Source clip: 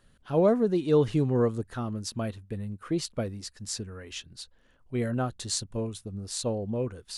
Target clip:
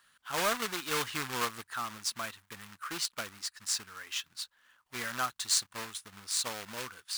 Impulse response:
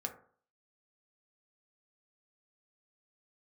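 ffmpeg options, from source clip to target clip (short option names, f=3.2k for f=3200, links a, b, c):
-af "highpass=f=320:p=1,acrusher=bits=2:mode=log:mix=0:aa=0.000001,lowshelf=f=760:t=q:w=1.5:g=-14,volume=2.5dB"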